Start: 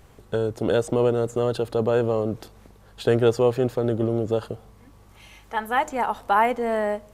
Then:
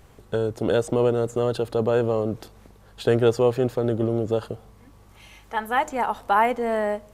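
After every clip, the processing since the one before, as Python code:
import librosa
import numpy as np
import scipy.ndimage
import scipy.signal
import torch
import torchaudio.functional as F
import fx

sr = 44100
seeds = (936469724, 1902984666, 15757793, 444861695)

y = x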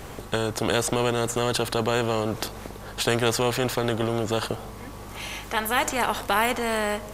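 y = fx.spectral_comp(x, sr, ratio=2.0)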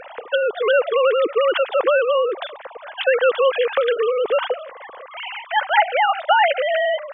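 y = fx.sine_speech(x, sr)
y = y * librosa.db_to_amplitude(6.5)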